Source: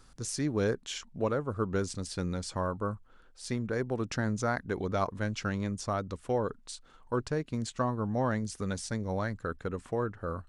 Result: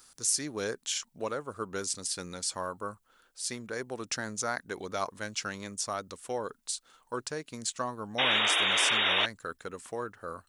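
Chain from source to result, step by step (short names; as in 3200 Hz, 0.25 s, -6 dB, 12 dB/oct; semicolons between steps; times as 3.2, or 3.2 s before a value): painted sound noise, 8.18–9.26, 270–3800 Hz -28 dBFS; RIAA curve recording; gain -1.5 dB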